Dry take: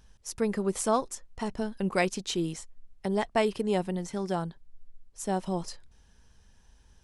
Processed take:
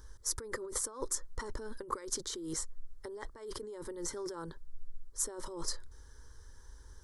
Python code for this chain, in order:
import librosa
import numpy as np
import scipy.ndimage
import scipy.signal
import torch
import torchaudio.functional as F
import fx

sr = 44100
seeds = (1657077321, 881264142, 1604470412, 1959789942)

y = fx.over_compress(x, sr, threshold_db=-37.0, ratio=-1.0)
y = fx.fixed_phaser(y, sr, hz=710.0, stages=6)
y = y * librosa.db_to_amplitude(1.0)